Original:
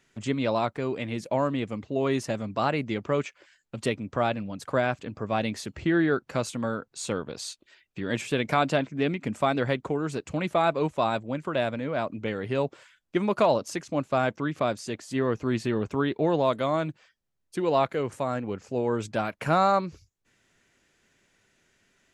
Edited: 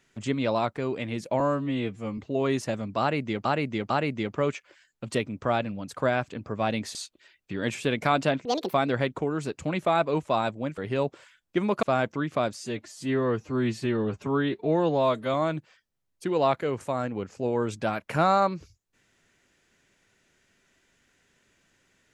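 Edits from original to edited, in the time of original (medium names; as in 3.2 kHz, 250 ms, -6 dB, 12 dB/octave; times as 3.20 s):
1.40–1.79 s: stretch 2×
2.61–3.06 s: loop, 3 plays
5.66–7.42 s: delete
8.92–9.42 s: speed 174%
11.46–12.37 s: delete
13.42–14.07 s: delete
14.81–16.66 s: stretch 1.5×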